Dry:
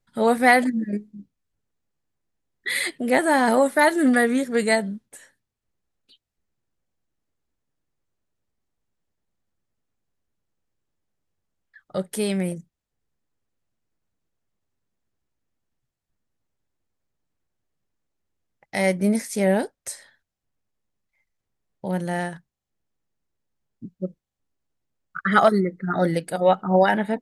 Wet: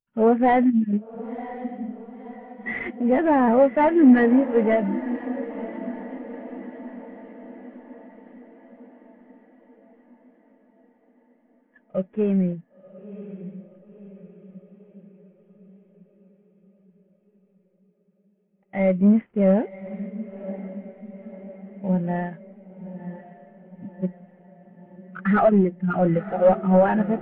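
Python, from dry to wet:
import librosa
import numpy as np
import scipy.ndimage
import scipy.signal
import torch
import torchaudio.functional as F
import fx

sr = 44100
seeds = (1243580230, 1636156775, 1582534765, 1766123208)

y = fx.cvsd(x, sr, bps=16000)
y = 10.0 ** (-17.0 / 20.0) * np.tanh(y / 10.0 ** (-17.0 / 20.0))
y = fx.echo_diffused(y, sr, ms=1021, feedback_pct=66, wet_db=-8.5)
y = fx.spectral_expand(y, sr, expansion=1.5)
y = y * 10.0 ** (7.0 / 20.0)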